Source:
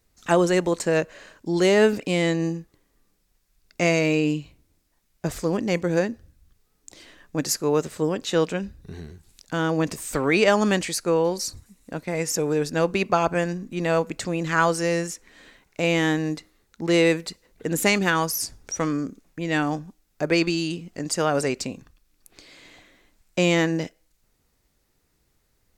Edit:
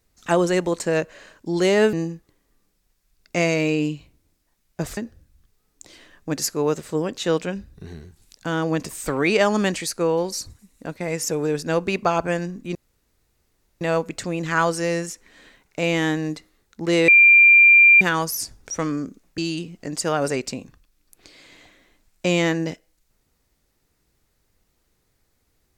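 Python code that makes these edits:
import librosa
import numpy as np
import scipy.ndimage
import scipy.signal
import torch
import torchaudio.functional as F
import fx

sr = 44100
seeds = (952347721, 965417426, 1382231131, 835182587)

y = fx.edit(x, sr, fx.cut(start_s=1.93, length_s=0.45),
    fx.cut(start_s=5.42, length_s=0.62),
    fx.insert_room_tone(at_s=13.82, length_s=1.06),
    fx.bleep(start_s=17.09, length_s=0.93, hz=2380.0, db=-8.0),
    fx.cut(start_s=19.39, length_s=1.12), tone=tone)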